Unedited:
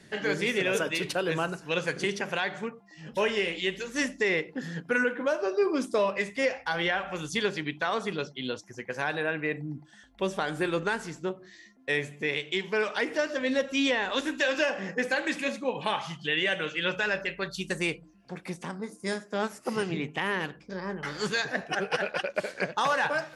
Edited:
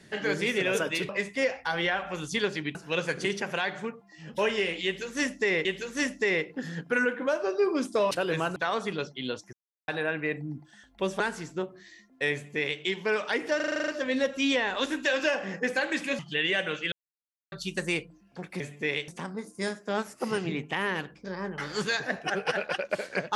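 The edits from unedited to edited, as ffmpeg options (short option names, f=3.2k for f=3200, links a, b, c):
-filter_complex "[0:a]asplit=22[a][b][c][d][e][f][g][h][i][j][k][l][m][n][o][p][q][r][s][t][u][v];[a]atrim=end=1.092[w];[b]atrim=start=6.098:end=7.762[x];[c]atrim=start=1.538:end=4.442[y];[d]atrim=start=3.638:end=6.102[z];[e]atrim=start=1.088:end=1.542[aa];[f]atrim=start=7.758:end=8.73,asetpts=PTS-STARTPTS,afade=t=out:st=0.968:d=0.004:c=hsin[ab];[g]atrim=start=8.73:end=9.08,asetpts=PTS-STARTPTS,volume=0[ac];[h]atrim=start=9.08:end=10.402,asetpts=PTS-STARTPTS,afade=t=in:d=0.004:c=hsin[ad];[i]atrim=start=10.868:end=13.272[ae];[j]atrim=start=13.228:end=13.272[af];[k]atrim=start=13.228:end=13.272[ag];[l]atrim=start=13.228:end=13.272[ah];[m]atrim=start=13.228:end=13.272[ai];[n]atrim=start=13.228:end=13.272[aj];[o]atrim=start=13.228:end=13.272[ak];[p]atrim=start=13.228:end=13.272[al];[q]atrim=start=13.228:end=15.542[am];[r]atrim=start=16.118:end=16.85,asetpts=PTS-STARTPTS,afade=t=out:st=0.728:d=0.004:c=hsin[an];[s]atrim=start=16.85:end=17.45,asetpts=PTS-STARTPTS,volume=0[ao];[t]atrim=start=17.45:end=18.532,asetpts=PTS-STARTPTS,afade=t=in:d=0.004:c=hsin[ap];[u]atrim=start=11.998:end=12.482[aq];[v]atrim=start=18.528[ar];[w][x]acrossfade=d=0.004:c1=hsin:c2=hsin[as];[as][y]acrossfade=d=0.004:c1=hsin:c2=hsin[at];[at][z]acrossfade=d=0.004:c1=hsin:c2=hsin[au];[au][aa]acrossfade=d=0.004:c1=hsin:c2=hsin[av];[ab][ac][ad]concat=n=3:v=0:a=1[aw];[av][aw]acrossfade=d=0.004:c1=hsin:c2=hsin[ax];[ax][ae]acrossfade=d=0.004:c1=hsin:c2=hsin[ay];[ay][af]acrossfade=d=0.004:c1=hsin:c2=hsin[az];[az][ag]acrossfade=d=0.004:c1=hsin:c2=hsin[ba];[ba][ah]acrossfade=d=0.004:c1=hsin:c2=hsin[bb];[bb][ai]acrossfade=d=0.004:c1=hsin:c2=hsin[bc];[bc][aj]acrossfade=d=0.004:c1=hsin:c2=hsin[bd];[bd][ak]acrossfade=d=0.004:c1=hsin:c2=hsin[be];[be][al]acrossfade=d=0.004:c1=hsin:c2=hsin[bf];[bf][am]acrossfade=d=0.004:c1=hsin:c2=hsin[bg];[an][ao][ap]concat=n=3:v=0:a=1[bh];[bg][bh]acrossfade=d=0.004:c1=hsin:c2=hsin[bi];[bi][aq]acrossfade=d=0.004:c1=hsin:c2=hsin[bj];[bj][ar]acrossfade=d=0.004:c1=hsin:c2=hsin"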